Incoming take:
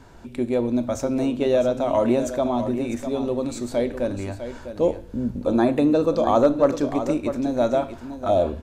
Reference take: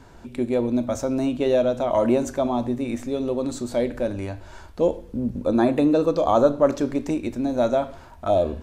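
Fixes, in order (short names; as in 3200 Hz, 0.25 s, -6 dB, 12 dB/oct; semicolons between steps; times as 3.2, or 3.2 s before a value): clip repair -7 dBFS; inverse comb 0.652 s -10.5 dB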